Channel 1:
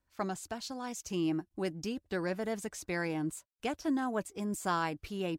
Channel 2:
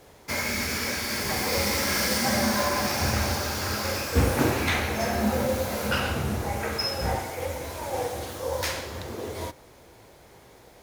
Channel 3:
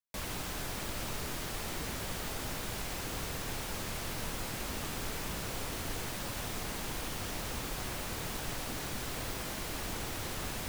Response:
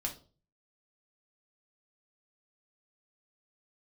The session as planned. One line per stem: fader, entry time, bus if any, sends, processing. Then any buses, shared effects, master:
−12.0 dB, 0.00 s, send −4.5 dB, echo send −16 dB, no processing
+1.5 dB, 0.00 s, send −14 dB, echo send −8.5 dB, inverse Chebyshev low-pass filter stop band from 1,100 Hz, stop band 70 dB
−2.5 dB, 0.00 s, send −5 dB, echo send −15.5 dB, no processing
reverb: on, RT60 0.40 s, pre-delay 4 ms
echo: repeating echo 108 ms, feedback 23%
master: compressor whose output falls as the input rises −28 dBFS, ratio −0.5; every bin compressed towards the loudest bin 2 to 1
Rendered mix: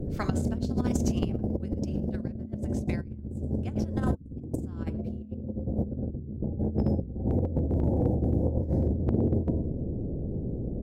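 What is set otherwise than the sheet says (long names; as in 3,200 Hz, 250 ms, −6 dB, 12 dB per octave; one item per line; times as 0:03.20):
stem 1 −12.0 dB → −22.5 dB
stem 2 +1.5 dB → +12.0 dB
stem 3: muted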